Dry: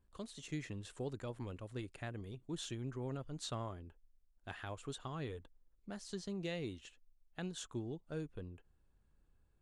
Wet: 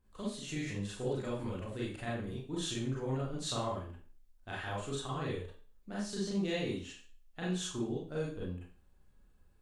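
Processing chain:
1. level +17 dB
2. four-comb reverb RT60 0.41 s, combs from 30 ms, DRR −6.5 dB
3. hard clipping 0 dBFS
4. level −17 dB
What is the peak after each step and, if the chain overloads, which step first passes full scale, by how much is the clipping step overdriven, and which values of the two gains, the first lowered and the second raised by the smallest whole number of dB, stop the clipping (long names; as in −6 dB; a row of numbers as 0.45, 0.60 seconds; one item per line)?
−11.5, −5.5, −5.5, −22.5 dBFS
no step passes full scale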